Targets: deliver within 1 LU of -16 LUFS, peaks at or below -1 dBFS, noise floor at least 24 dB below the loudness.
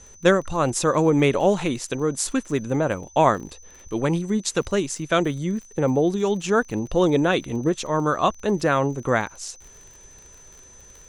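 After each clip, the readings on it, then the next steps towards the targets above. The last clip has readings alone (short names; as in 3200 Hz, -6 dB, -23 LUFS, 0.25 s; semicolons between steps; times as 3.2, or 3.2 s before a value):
ticks 39/s; steady tone 6100 Hz; tone level -47 dBFS; loudness -22.5 LUFS; peak -3.5 dBFS; loudness target -16.0 LUFS
-> de-click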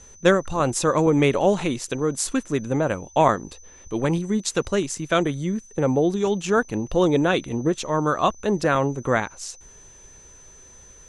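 ticks 0.36/s; steady tone 6100 Hz; tone level -47 dBFS
-> notch 6100 Hz, Q 30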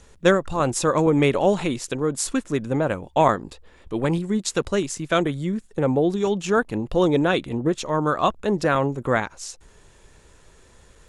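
steady tone none; loudness -22.5 LUFS; peak -3.5 dBFS; loudness target -16.0 LUFS
-> gain +6.5 dB; limiter -1 dBFS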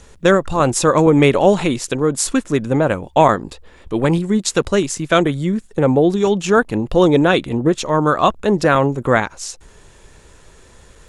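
loudness -16.0 LUFS; peak -1.0 dBFS; noise floor -46 dBFS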